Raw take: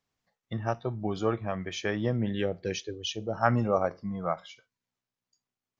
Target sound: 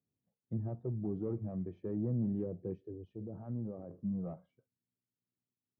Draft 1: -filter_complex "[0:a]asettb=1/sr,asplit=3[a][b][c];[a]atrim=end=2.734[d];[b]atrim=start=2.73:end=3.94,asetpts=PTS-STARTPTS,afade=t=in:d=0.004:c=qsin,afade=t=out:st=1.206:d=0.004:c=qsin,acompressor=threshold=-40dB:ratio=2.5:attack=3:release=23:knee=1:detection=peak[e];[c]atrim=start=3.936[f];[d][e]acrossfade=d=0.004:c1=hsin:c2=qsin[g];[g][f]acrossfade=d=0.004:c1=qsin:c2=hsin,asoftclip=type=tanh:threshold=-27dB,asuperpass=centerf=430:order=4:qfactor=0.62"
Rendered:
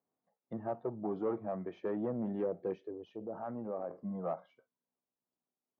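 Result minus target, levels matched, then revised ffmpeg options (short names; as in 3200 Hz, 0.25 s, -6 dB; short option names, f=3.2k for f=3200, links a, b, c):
500 Hz band +6.0 dB
-filter_complex "[0:a]asettb=1/sr,asplit=3[a][b][c];[a]atrim=end=2.734[d];[b]atrim=start=2.73:end=3.94,asetpts=PTS-STARTPTS,afade=t=in:d=0.004:c=qsin,afade=t=out:st=1.206:d=0.004:c=qsin,acompressor=threshold=-40dB:ratio=2.5:attack=3:release=23:knee=1:detection=peak[e];[c]atrim=start=3.936[f];[d][e]acrossfade=d=0.004:c1=hsin:c2=qsin[g];[g][f]acrossfade=d=0.004:c1=qsin:c2=hsin,asoftclip=type=tanh:threshold=-27dB,asuperpass=centerf=180:order=4:qfactor=0.62"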